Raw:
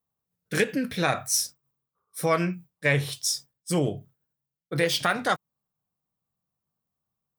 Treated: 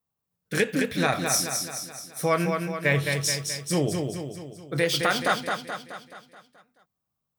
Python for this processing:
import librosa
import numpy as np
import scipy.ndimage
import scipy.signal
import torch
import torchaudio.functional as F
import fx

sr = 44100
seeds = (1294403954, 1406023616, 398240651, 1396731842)

y = fx.echo_feedback(x, sr, ms=214, feedback_pct=53, wet_db=-5.0)
y = fx.resample_linear(y, sr, factor=2, at=(2.34, 2.99))